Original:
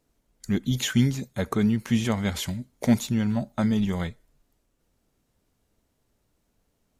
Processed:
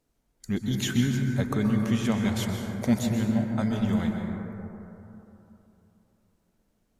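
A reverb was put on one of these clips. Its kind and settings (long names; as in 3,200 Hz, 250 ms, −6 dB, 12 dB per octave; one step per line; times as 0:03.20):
dense smooth reverb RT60 3.2 s, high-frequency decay 0.25×, pre-delay 115 ms, DRR 2 dB
level −3.5 dB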